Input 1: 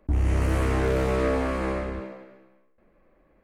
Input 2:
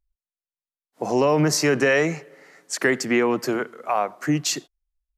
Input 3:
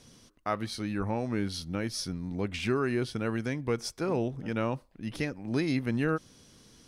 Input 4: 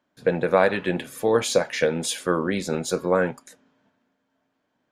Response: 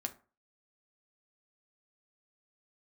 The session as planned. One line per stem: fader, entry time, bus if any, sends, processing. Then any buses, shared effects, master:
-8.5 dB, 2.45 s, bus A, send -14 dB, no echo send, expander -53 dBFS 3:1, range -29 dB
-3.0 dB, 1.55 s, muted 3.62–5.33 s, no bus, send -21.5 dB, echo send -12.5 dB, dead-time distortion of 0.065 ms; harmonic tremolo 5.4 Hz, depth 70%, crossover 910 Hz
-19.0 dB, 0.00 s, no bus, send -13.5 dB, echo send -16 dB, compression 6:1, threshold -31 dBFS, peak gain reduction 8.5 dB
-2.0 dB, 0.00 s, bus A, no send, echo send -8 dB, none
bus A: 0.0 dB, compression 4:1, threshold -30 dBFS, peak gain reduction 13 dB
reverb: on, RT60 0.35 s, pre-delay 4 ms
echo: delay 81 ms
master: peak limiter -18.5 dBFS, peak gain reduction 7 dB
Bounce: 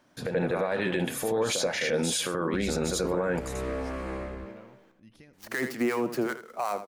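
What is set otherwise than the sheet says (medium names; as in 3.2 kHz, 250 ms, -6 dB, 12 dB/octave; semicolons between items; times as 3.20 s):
stem 2: entry 1.55 s -> 2.70 s; stem 4 -2.0 dB -> +9.5 dB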